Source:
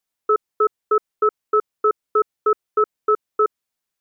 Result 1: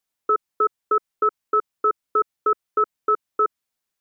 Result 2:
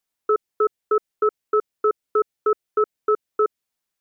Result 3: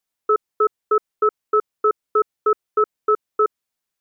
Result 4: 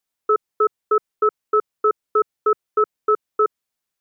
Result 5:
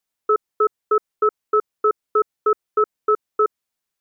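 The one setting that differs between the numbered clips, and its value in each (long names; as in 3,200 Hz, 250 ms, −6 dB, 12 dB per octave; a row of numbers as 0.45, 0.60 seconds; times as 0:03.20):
dynamic equaliser, frequency: 440, 1,100, 8,800, 140, 2,900 Hertz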